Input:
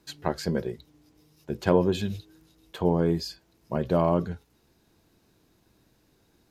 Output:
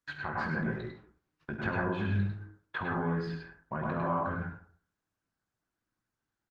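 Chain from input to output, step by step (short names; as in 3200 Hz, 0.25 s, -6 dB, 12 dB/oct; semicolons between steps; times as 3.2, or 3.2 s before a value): compressor 10:1, threshold -28 dBFS, peak gain reduction 13.5 dB; 0.71–1.53 high shelf 2400 Hz +11 dB; limiter -24.5 dBFS, peak gain reduction 10 dB; doubler 50 ms -14 dB; 2.81–3.93 upward compressor, threshold -58 dBFS; gate -51 dBFS, range -29 dB; EQ curve 260 Hz 0 dB, 440 Hz -7 dB, 1500 Hz +13 dB, 5500 Hz -17 dB, 8900 Hz -29 dB; early reflections 19 ms -7.5 dB, 67 ms -13 dB; reverb RT60 0.50 s, pre-delay 92 ms, DRR -1 dB; Opus 24 kbps 48000 Hz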